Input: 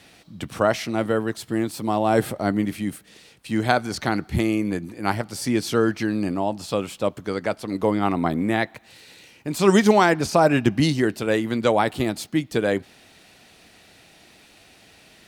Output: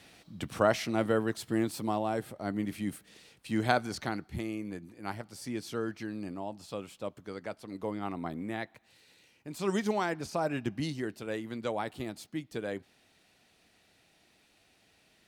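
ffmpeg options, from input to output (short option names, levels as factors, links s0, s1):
-af "volume=1.78,afade=t=out:st=1.74:d=0.5:silence=0.251189,afade=t=in:st=2.24:d=0.65:silence=0.298538,afade=t=out:st=3.78:d=0.49:silence=0.421697"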